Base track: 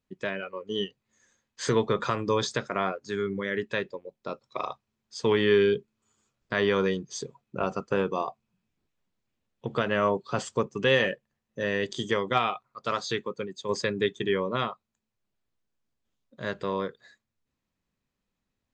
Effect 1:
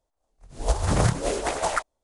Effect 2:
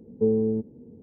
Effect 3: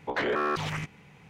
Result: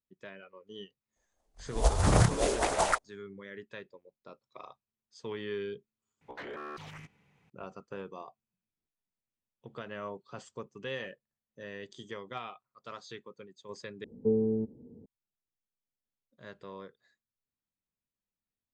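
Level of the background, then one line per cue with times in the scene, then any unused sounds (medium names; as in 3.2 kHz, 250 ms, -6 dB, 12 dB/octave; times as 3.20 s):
base track -15.5 dB
1.16 s: add 1 -2 dB
6.21 s: replace with 3 -14.5 dB
14.04 s: replace with 2 -5 dB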